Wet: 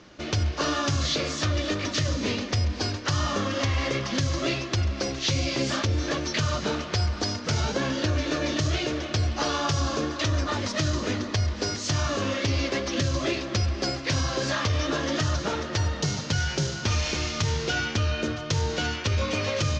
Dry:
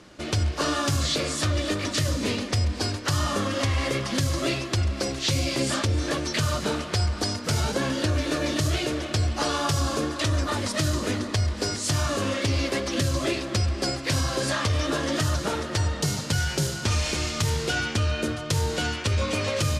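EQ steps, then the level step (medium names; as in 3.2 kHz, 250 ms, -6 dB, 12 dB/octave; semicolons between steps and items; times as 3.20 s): elliptic low-pass 6.4 kHz, stop band 80 dB; 0.0 dB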